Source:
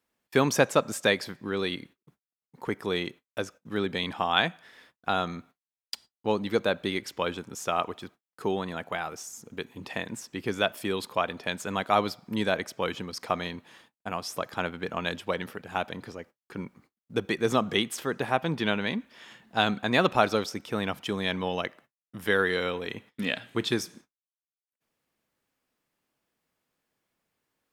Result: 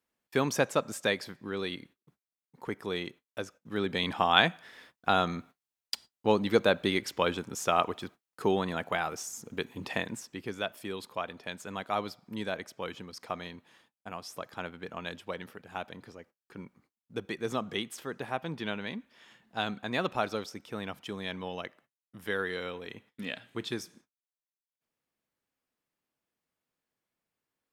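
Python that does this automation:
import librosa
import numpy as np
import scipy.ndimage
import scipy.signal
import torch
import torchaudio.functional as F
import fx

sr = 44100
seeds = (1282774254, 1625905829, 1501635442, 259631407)

y = fx.gain(x, sr, db=fx.line((3.58, -5.0), (4.14, 1.5), (9.95, 1.5), (10.54, -8.0)))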